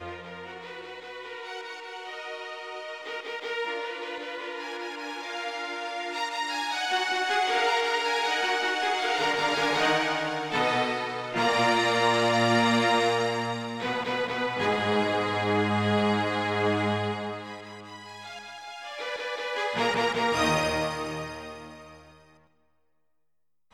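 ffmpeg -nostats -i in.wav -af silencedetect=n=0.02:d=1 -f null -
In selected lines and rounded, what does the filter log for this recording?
silence_start: 21.67
silence_end: 23.73 | silence_duration: 2.06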